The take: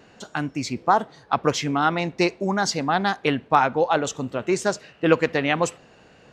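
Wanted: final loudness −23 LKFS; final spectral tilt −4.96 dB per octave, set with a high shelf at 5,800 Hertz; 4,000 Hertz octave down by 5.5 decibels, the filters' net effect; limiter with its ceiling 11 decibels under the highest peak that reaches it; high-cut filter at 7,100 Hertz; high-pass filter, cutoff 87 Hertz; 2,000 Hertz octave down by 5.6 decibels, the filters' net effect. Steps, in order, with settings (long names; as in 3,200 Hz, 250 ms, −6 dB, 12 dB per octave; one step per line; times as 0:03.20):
high-pass filter 87 Hz
low-pass filter 7,100 Hz
parametric band 2,000 Hz −7 dB
parametric band 4,000 Hz −7.5 dB
high-shelf EQ 5,800 Hz +7 dB
level +4.5 dB
brickwall limiter −10.5 dBFS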